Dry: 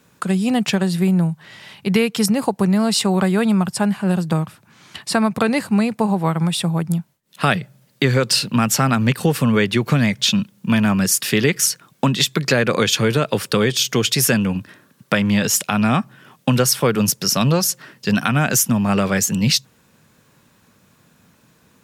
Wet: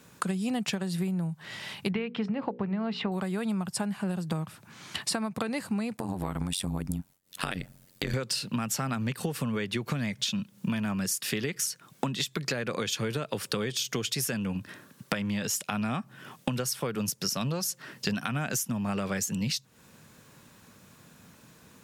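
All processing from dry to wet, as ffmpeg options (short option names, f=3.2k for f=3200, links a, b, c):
-filter_complex "[0:a]asettb=1/sr,asplit=3[a][b][c];[a]atrim=end=1.914[d];[b]atrim=start=1.91:end=3.12,asetpts=PTS-STARTPTS,afade=t=in:d=0.004:c=qsin,afade=t=out:st=1.206:d=0.004:c=qsin,lowpass=f=3k:w=0.5412,lowpass=f=3k:w=1.3066,bandreject=f=60:t=h:w=6,bandreject=f=120:t=h:w=6,bandreject=f=180:t=h:w=6,bandreject=f=240:t=h:w=6,bandreject=f=300:t=h:w=6,bandreject=f=360:t=h:w=6,bandreject=f=420:t=h:w=6,bandreject=f=480:t=h:w=6,bandreject=f=540:t=h:w=6[e];[c]atrim=start=3.116[f];[d][e]acrossfade=d=0.004:c1=hsin:c2=qsin[g];[g][f]acrossfade=d=0.004:c1=qsin:c2=hsin,asettb=1/sr,asplit=3[h][i][j];[h]atrim=end=5.974[k];[i]atrim=start=5.97:end=8.14,asetpts=PTS-STARTPTS,afade=t=in:d=0.004:c=qsin,afade=t=out:st=2.166:d=0.004:c=qsin,highshelf=f=6.2k:g=6,acompressor=threshold=-20dB:ratio=4:attack=3.2:release=140:knee=1:detection=peak,tremolo=f=92:d=1[l];[j]atrim=start=8.136[m];[k][l]acrossfade=d=0.004:c1=hsin:c2=qsin[n];[n][m]acrossfade=d=0.004:c1=qsin:c2=hsin,equalizer=f=8.2k:t=o:w=1.6:g=2,acompressor=threshold=-27dB:ratio=16"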